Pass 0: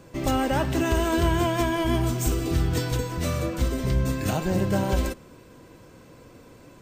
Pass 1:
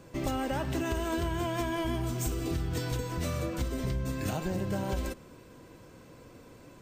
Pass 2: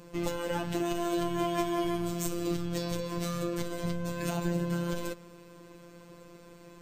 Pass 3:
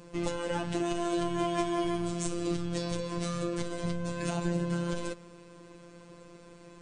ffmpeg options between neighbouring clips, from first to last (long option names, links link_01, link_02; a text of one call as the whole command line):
ffmpeg -i in.wav -af "acompressor=threshold=-25dB:ratio=6,volume=-3dB" out.wav
ffmpeg -i in.wav -af "afftfilt=real='hypot(re,im)*cos(PI*b)':imag='0':win_size=1024:overlap=0.75,volume=4dB" out.wav
ffmpeg -i in.wav -af "aresample=22050,aresample=44100" out.wav